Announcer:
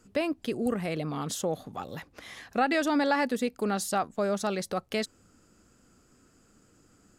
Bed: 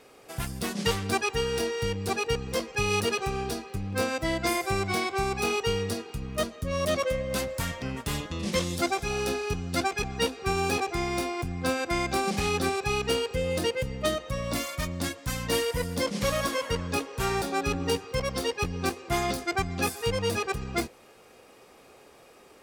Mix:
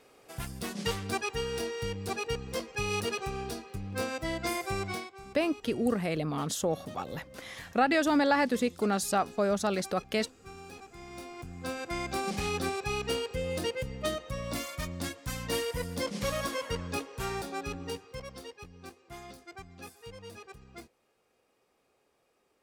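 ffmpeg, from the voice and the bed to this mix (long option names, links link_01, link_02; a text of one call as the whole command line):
ffmpeg -i stem1.wav -i stem2.wav -filter_complex "[0:a]adelay=5200,volume=0.5dB[link_01];[1:a]volume=10dB,afade=type=out:start_time=4.87:duration=0.24:silence=0.177828,afade=type=in:start_time=10.93:duration=1.38:silence=0.16788,afade=type=out:start_time=16.86:duration=1.77:silence=0.199526[link_02];[link_01][link_02]amix=inputs=2:normalize=0" out.wav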